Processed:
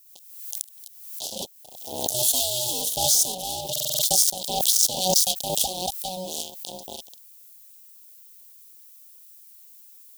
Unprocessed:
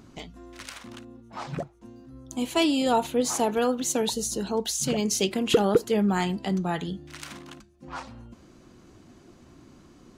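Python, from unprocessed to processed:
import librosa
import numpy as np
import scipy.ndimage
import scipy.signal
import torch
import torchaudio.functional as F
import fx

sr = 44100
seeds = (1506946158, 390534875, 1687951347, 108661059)

y = fx.doppler_pass(x, sr, speed_mps=40, closest_m=19.0, pass_at_s=2.12)
y = y * np.sin(2.0 * np.pi * 370.0 * np.arange(len(y)) / sr)
y = fx.fuzz(y, sr, gain_db=40.0, gate_db=-45.0)
y = fx.dynamic_eq(y, sr, hz=1200.0, q=0.79, threshold_db=-32.0, ratio=4.0, max_db=-4)
y = scipy.signal.sosfilt(scipy.signal.ellip(3, 1.0, 40, [790.0, 3300.0], 'bandstop', fs=sr, output='sos'), y)
y = fx.dmg_noise_colour(y, sr, seeds[0], colour='blue', level_db=-64.0)
y = fx.rider(y, sr, range_db=4, speed_s=0.5)
y = fx.tilt_eq(y, sr, slope=4.5)
y = fx.buffer_glitch(y, sr, at_s=(3.71,), block=2048, repeats=6)
y = fx.pre_swell(y, sr, db_per_s=56.0)
y = y * 10.0 ** (-7.0 / 20.0)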